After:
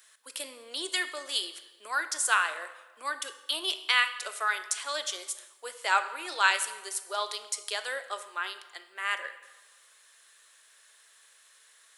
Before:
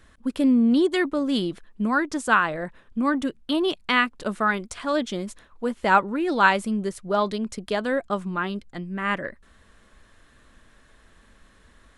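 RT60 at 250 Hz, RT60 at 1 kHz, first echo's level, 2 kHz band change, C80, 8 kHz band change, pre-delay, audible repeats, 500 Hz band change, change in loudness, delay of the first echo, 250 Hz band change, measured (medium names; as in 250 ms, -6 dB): 1.1 s, 1.2 s, no echo, -3.5 dB, 14.0 dB, +9.5 dB, 14 ms, no echo, -14.5 dB, -6.0 dB, no echo, -30.0 dB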